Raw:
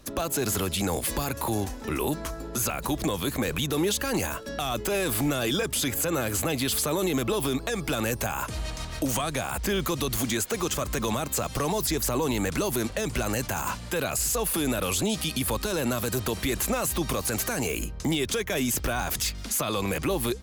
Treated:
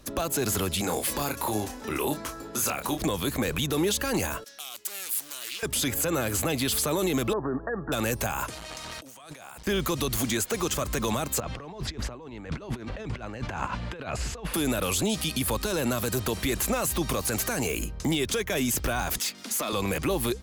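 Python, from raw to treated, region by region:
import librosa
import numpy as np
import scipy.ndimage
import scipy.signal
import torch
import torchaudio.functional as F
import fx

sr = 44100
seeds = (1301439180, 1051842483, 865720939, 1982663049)

y = fx.chain(x, sr, fx.low_shelf(hz=130.0, db=-11.5),
    fx.doubler(ms=28.0, db=-6.5), at=(0.81, 3.01))
y = fx.chain(y, sr, fx.differentiator(),
    fx.doppler_dist(depth_ms=0.46), at=(4.44, 5.63))
y = fx.chain(y, sr, fx.brickwall_lowpass(high_hz=1900.0),
    fx.low_shelf(hz=200.0, db=-5.5), at=(7.33, 7.92))
y = fx.chain(y, sr, fx.highpass(hz=430.0, slope=6),
    fx.over_compress(threshold_db=-42.0, ratio=-1.0),
    fx.transformer_sat(knee_hz=590.0), at=(8.49, 9.67))
y = fx.chain(y, sr, fx.lowpass(hz=2900.0, slope=12),
    fx.over_compress(threshold_db=-33.0, ratio=-0.5), at=(11.4, 14.54))
y = fx.chain(y, sr, fx.cheby1_highpass(hz=220.0, order=3),
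    fx.overload_stage(gain_db=24.0), at=(19.18, 19.73))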